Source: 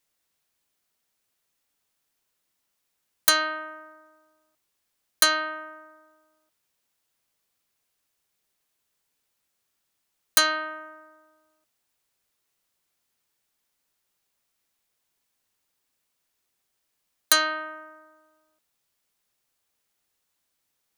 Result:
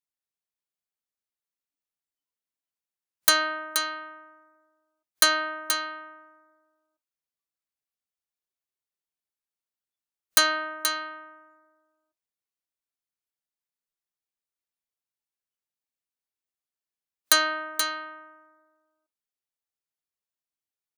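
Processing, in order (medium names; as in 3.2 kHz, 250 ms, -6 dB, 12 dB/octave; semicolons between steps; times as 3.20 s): spectral noise reduction 19 dB; on a send: delay 478 ms -7 dB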